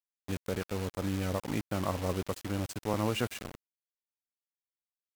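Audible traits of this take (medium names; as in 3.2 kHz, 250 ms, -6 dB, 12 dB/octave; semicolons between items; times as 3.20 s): a quantiser's noise floor 6-bit, dither none; MP3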